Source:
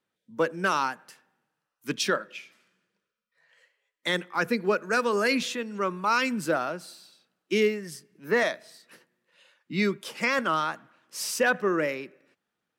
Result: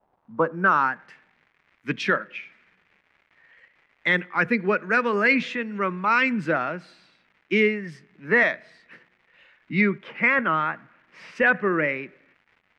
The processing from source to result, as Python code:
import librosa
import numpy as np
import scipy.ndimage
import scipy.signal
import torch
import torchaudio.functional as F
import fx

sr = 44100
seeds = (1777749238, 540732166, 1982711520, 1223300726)

y = fx.bass_treble(x, sr, bass_db=7, treble_db=fx.steps((0.0, 7.0), (9.8, -10.0), (11.35, 1.0)))
y = fx.dmg_crackle(y, sr, seeds[0], per_s=350.0, level_db=-48.0)
y = fx.filter_sweep_lowpass(y, sr, from_hz=770.0, to_hz=2100.0, start_s=0.03, end_s=1.1, q=2.8)